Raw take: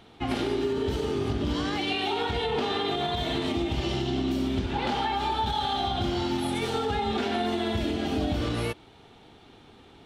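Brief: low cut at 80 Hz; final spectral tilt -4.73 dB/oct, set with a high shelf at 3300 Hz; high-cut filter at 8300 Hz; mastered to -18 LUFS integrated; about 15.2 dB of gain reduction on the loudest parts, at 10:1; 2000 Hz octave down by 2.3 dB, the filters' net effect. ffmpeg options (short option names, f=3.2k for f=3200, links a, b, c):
-af "highpass=80,lowpass=8.3k,equalizer=f=2k:t=o:g=-6.5,highshelf=f=3.3k:g=9,acompressor=threshold=-40dB:ratio=10,volume=25dB"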